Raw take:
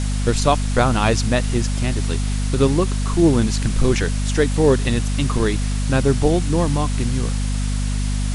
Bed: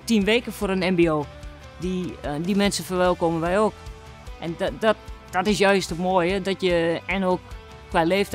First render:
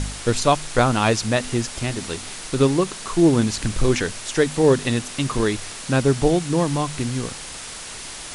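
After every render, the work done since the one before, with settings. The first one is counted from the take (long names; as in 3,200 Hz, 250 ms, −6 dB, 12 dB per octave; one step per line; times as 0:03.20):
hum removal 50 Hz, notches 5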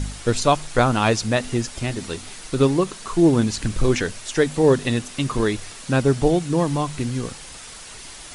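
broadband denoise 6 dB, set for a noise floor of −35 dBFS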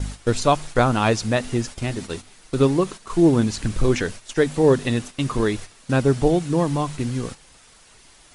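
high-shelf EQ 2,200 Hz −3 dB
noise gate −32 dBFS, range −10 dB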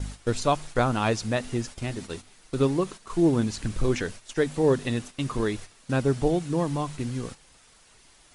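level −5.5 dB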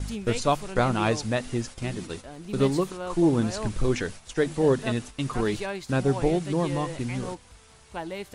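mix in bed −14.5 dB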